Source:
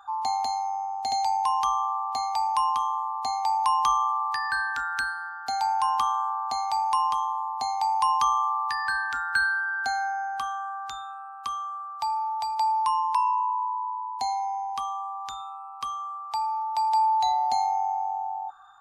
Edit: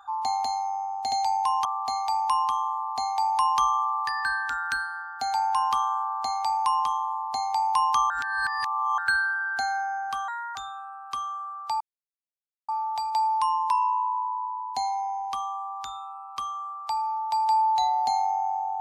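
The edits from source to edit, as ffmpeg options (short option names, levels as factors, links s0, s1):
-filter_complex "[0:a]asplit=7[s0][s1][s2][s3][s4][s5][s6];[s0]atrim=end=1.652[s7];[s1]atrim=start=1.918:end=8.372[s8];[s2]atrim=start=8.368:end=9.252,asetpts=PTS-STARTPTS,areverse[s9];[s3]atrim=start=9.248:end=10.554[s10];[s4]atrim=start=10.55:end=10.88,asetpts=PTS-STARTPTS,asetrate=52920,aresample=44100[s11];[s5]atrim=start=10.876:end=12.13,asetpts=PTS-STARTPTS,afade=t=out:st=1.25:d=0.004:c=hsin,apad=pad_dur=0.88[s12];[s6]atrim=start=12.13,asetpts=PTS-STARTPTS,afade=t=in:d=0.004:c=hsin[s13];[s7][s8]acrossfade=d=0.004:c1=hsin:c2=hsin[s14];[s14][s9]acrossfade=d=0.004:c1=hsin:c2=hsin[s15];[s15][s10]acrossfade=d=0.004:c1=hsin:c2=hsin[s16];[s16][s11]acrossfade=d=0.004:c1=hsin:c2=hsin[s17];[s12][s13]concat=n=2:v=0:a=1[s18];[s17][s18]acrossfade=d=0.004:c1=hsin:c2=hsin"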